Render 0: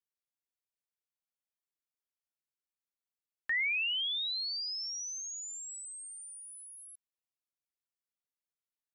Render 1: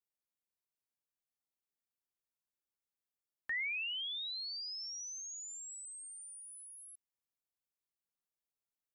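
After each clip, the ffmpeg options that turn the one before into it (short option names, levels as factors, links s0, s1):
-af "equalizer=f=3100:t=o:w=2.8:g=-5.5,volume=0.891"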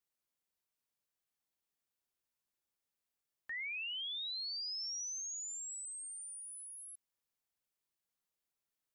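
-af "alimiter=level_in=7.08:limit=0.0631:level=0:latency=1,volume=0.141,volume=1.41"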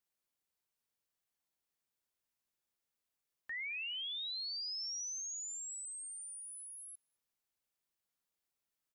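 -filter_complex "[0:a]asplit=2[s0][s1];[s1]adelay=209,lowpass=f=900:p=1,volume=0.168,asplit=2[s2][s3];[s3]adelay=209,lowpass=f=900:p=1,volume=0.49,asplit=2[s4][s5];[s5]adelay=209,lowpass=f=900:p=1,volume=0.49,asplit=2[s6][s7];[s7]adelay=209,lowpass=f=900:p=1,volume=0.49[s8];[s0][s2][s4][s6][s8]amix=inputs=5:normalize=0"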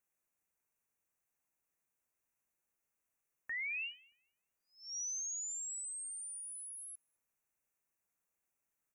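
-af "asuperstop=centerf=4000:order=20:qfactor=1.4,volume=1.26"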